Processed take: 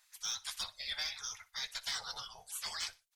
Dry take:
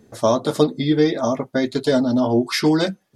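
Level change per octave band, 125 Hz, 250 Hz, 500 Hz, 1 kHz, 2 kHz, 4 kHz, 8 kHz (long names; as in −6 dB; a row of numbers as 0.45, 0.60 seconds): −39.5 dB, below −40 dB, below −40 dB, −22.5 dB, −14.0 dB, −8.0 dB, −5.0 dB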